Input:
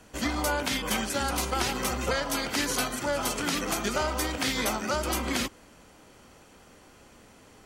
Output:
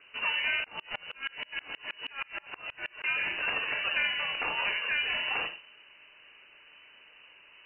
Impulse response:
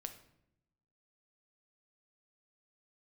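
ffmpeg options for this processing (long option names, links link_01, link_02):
-filter_complex "[1:a]atrim=start_sample=2205,afade=type=out:start_time=0.19:duration=0.01,atrim=end_sample=8820[link_01];[0:a][link_01]afir=irnorm=-1:irlink=0,lowpass=frequency=2600:width_type=q:width=0.5098,lowpass=frequency=2600:width_type=q:width=0.6013,lowpass=frequency=2600:width_type=q:width=0.9,lowpass=frequency=2600:width_type=q:width=2.563,afreqshift=-3000,asettb=1/sr,asplit=3[link_02][link_03][link_04];[link_02]atrim=end=0.644[link_05];[link_03]atrim=start=0.64:end=3.04,asetpts=PTS-STARTPTS,afade=type=in:duration=0.004:curve=qsin,afade=type=out:start_time=2.396:duration=0.004:curve=qsin,aeval=exprs='val(0)*pow(10,-31*if(lt(mod(-6.3*n/s,1),2*abs(-6.3)/1000),1-mod(-6.3*n/s,1)/(2*abs(-6.3)/1000),(mod(-6.3*n/s,1)-2*abs(-6.3)/1000)/(1-2*abs(-6.3)/1000))/20)':channel_layout=same[link_06];[link_04]atrim=start=3.036[link_07];[link_05][link_06]acrossfade=duration=0.004:curve1=hsin:curve2=qsin[link_08];[link_08][link_07]acrossfade=duration=0.004:curve1=qsin:curve2=hsin,volume=2dB"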